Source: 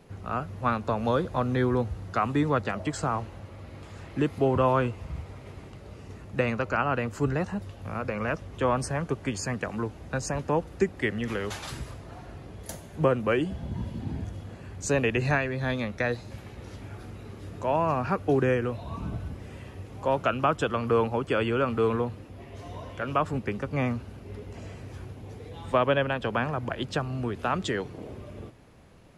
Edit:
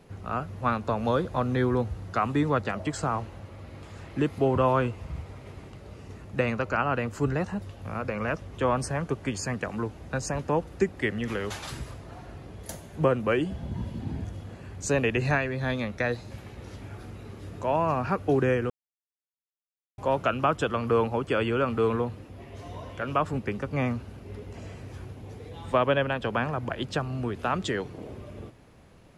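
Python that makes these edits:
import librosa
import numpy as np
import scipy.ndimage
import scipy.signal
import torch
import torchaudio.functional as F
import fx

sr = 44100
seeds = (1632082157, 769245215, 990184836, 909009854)

y = fx.edit(x, sr, fx.silence(start_s=18.7, length_s=1.28), tone=tone)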